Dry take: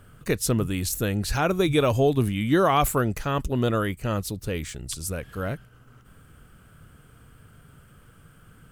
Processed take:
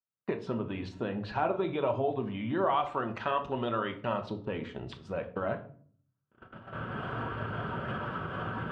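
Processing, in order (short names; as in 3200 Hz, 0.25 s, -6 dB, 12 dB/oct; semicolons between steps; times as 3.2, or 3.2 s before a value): bin magnitudes rounded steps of 15 dB; recorder AGC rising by 14 dB/s; gate -31 dBFS, range -52 dB; 2.7–4.22 tilt shelf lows -5.5 dB, about 1300 Hz; compressor, threshold -29 dBFS, peak gain reduction 12 dB; speaker cabinet 150–3000 Hz, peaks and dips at 170 Hz -8 dB, 660 Hz +5 dB, 950 Hz +10 dB, 2200 Hz -6 dB; shoebox room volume 520 m³, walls furnished, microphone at 1.1 m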